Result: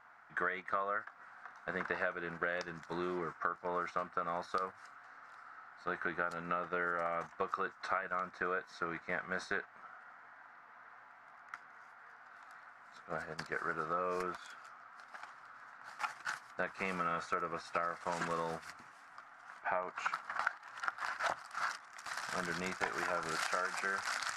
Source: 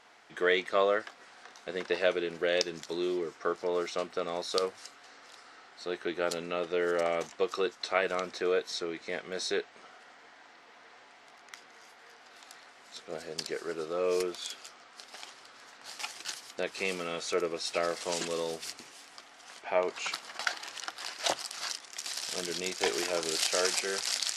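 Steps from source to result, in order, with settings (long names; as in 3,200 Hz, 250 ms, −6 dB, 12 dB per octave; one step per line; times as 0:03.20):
drawn EQ curve 110 Hz 0 dB, 180 Hz −3 dB, 410 Hz −15 dB, 670 Hz −5 dB, 1,400 Hz +5 dB, 3,100 Hz −18 dB
downward compressor 16 to 1, threshold −38 dBFS, peak gain reduction 17 dB
noise gate −48 dBFS, range −7 dB
level +6.5 dB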